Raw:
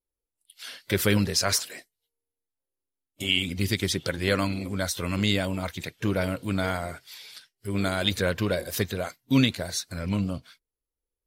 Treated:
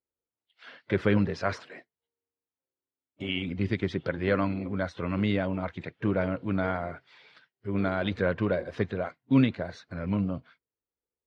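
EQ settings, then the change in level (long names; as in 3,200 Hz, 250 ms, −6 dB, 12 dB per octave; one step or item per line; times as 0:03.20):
high-pass filter 99 Hz
low-pass filter 1,800 Hz 12 dB per octave
high-frequency loss of the air 54 metres
0.0 dB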